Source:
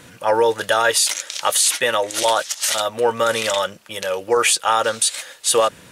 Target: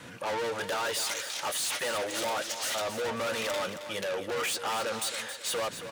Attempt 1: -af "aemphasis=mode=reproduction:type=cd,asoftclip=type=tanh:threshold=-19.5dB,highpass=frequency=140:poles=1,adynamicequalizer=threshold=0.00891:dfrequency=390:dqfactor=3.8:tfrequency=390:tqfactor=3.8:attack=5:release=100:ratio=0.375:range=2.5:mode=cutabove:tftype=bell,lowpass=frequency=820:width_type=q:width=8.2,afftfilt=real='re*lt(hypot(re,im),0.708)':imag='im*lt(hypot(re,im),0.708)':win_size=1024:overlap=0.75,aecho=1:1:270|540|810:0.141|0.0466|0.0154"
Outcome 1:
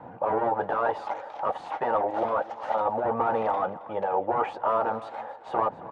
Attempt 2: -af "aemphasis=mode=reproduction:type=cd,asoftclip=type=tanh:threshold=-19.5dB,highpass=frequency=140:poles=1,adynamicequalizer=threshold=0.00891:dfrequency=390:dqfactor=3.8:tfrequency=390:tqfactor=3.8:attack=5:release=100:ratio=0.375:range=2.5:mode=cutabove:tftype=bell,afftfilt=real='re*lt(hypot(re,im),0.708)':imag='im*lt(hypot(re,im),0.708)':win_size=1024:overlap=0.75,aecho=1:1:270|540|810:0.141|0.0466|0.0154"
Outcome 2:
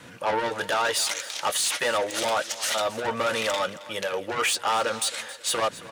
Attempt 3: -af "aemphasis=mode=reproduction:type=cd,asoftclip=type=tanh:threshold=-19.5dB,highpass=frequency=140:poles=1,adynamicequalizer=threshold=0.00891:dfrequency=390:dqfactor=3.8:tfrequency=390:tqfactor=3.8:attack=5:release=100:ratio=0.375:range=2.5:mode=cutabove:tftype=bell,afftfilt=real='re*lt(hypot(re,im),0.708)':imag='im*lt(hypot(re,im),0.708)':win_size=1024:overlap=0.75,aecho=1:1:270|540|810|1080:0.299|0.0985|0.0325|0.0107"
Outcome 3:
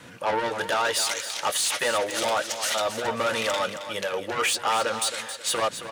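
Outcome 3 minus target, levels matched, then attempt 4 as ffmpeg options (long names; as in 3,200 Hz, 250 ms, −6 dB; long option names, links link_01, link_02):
soft clipping: distortion −5 dB
-af "aemphasis=mode=reproduction:type=cd,asoftclip=type=tanh:threshold=-29.5dB,highpass=frequency=140:poles=1,adynamicequalizer=threshold=0.00891:dfrequency=390:dqfactor=3.8:tfrequency=390:tqfactor=3.8:attack=5:release=100:ratio=0.375:range=2.5:mode=cutabove:tftype=bell,afftfilt=real='re*lt(hypot(re,im),0.708)':imag='im*lt(hypot(re,im),0.708)':win_size=1024:overlap=0.75,aecho=1:1:270|540|810|1080:0.299|0.0985|0.0325|0.0107"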